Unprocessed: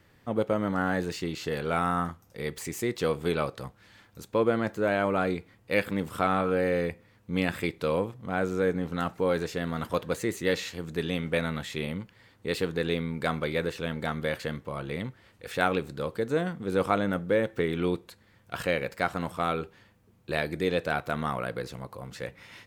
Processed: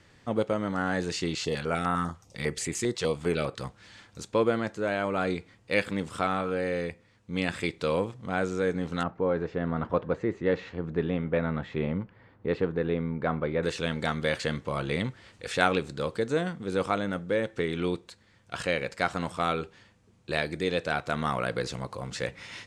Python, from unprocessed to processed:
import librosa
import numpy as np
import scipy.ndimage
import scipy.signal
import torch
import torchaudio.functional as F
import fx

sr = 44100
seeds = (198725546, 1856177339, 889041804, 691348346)

y = fx.filter_held_notch(x, sr, hz=10.0, low_hz=270.0, high_hz=5700.0, at=(1.35, 3.61))
y = fx.lowpass(y, sr, hz=1300.0, slope=12, at=(9.03, 13.63))
y = scipy.signal.sosfilt(scipy.signal.butter(4, 8300.0, 'lowpass', fs=sr, output='sos'), y)
y = fx.high_shelf(y, sr, hz=3700.0, db=7.5)
y = fx.rider(y, sr, range_db=4, speed_s=0.5)